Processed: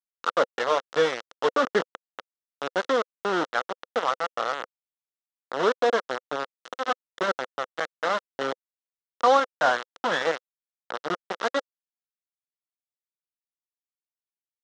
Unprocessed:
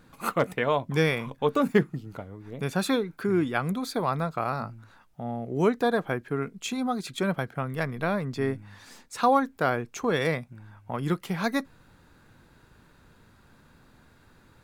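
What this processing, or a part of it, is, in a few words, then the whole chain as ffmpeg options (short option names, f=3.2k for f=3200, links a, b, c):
hand-held game console: -filter_complex "[0:a]asettb=1/sr,asplit=3[a][b][c];[a]atrim=end=9.534[d];[b]atrim=start=9.53:end=10.22,asetpts=PTS-STARTPTS,afade=t=in:d=0.004:c=qsin,afade=t=out:st=0.686:d=0.004:c=qsin,aecho=1:1:1.2:0.96,atrim=end_sample=30429[e];[c]atrim=start=10.216[f];[d][e]acrossfade=d=0.004:c1=hsin:c2=qsin[g];[g][f]acrossfade=d=0.004:c1=qsin:c2=hsin,acrusher=bits=3:mix=0:aa=0.000001,highpass=400,equalizer=f=510:t=q:w=4:g=6,equalizer=f=1.3k:t=q:w=4:g=6,equalizer=f=2.4k:t=q:w=4:g=-10,equalizer=f=4.6k:t=q:w=4:g=-7,lowpass=f=5.1k:w=0.5412,lowpass=f=5.1k:w=1.3066"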